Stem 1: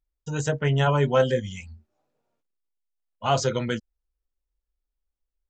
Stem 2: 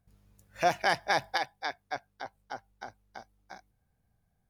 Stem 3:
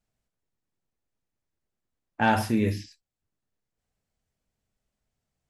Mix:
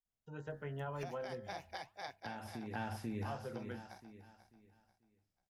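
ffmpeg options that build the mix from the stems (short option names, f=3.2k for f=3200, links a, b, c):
-filter_complex "[0:a]lowpass=1.7k,lowshelf=f=140:g=-11,bandreject=f=65.78:t=h:w=4,bandreject=f=131.56:t=h:w=4,bandreject=f=197.34:t=h:w=4,bandreject=f=263.12:t=h:w=4,bandreject=f=328.9:t=h:w=4,bandreject=f=394.68:t=h:w=4,bandreject=f=460.46:t=h:w=4,bandreject=f=526.24:t=h:w=4,bandreject=f=592.02:t=h:w=4,bandreject=f=657.8:t=h:w=4,bandreject=f=723.58:t=h:w=4,bandreject=f=789.36:t=h:w=4,bandreject=f=855.14:t=h:w=4,bandreject=f=920.92:t=h:w=4,bandreject=f=986.7:t=h:w=4,bandreject=f=1.05248k:t=h:w=4,bandreject=f=1.11826k:t=h:w=4,bandreject=f=1.18404k:t=h:w=4,bandreject=f=1.24982k:t=h:w=4,bandreject=f=1.3156k:t=h:w=4,bandreject=f=1.38138k:t=h:w=4,bandreject=f=1.44716k:t=h:w=4,bandreject=f=1.51294k:t=h:w=4,bandreject=f=1.57872k:t=h:w=4,bandreject=f=1.6445k:t=h:w=4,bandreject=f=1.71028k:t=h:w=4,bandreject=f=1.77606k:t=h:w=4,bandreject=f=1.84184k:t=h:w=4,bandreject=f=1.90762k:t=h:w=4,bandreject=f=1.9734k:t=h:w=4,volume=-15dB[a];[1:a]equalizer=f=1.4k:t=o:w=0.77:g=-4,adelay=400,volume=-2.5dB,asplit=2[b][c];[c]volume=-18dB[d];[2:a]adelay=50,volume=-9dB,asplit=2[e][f];[f]volume=-4dB[g];[b][e]amix=inputs=2:normalize=0,flanger=delay=0:depth=6.6:regen=-85:speed=1.4:shape=triangular,acompressor=threshold=-42dB:ratio=5,volume=0dB[h];[d][g]amix=inputs=2:normalize=0,aecho=0:1:490|980|1470|1960|2450:1|0.32|0.102|0.0328|0.0105[i];[a][h][i]amix=inputs=3:normalize=0,acrossover=split=130[j][k];[k]acompressor=threshold=-41dB:ratio=3[l];[j][l]amix=inputs=2:normalize=0"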